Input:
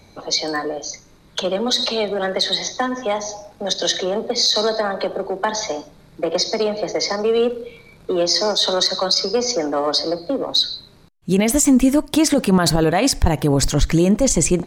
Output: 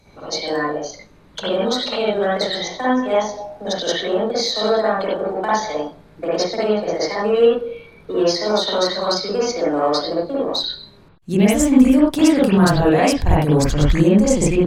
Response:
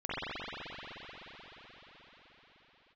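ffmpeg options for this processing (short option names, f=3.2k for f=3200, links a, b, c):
-filter_complex "[0:a]asettb=1/sr,asplit=3[a][b][c];[a]atrim=end=7.434[d];[b]atrim=start=7.43:end=8.9,asetpts=PTS-STARTPTS,afade=t=in:d=0.004:c=qsin,afade=t=out:st=1.466:d=0.004:c=qsin,bandreject=f=7.4k:w=7.1[e];[c]atrim=start=8.896[f];[d][e]acrossfade=d=0.004:c1=hsin:c2=qsin[g];[g][f]acrossfade=d=0.004:c1=qsin:c2=hsin[h];[1:a]atrim=start_sample=2205,afade=t=out:st=0.14:d=0.01,atrim=end_sample=6615,asetrate=40572,aresample=44100[i];[h][i]afir=irnorm=-1:irlink=0,volume=-1.5dB"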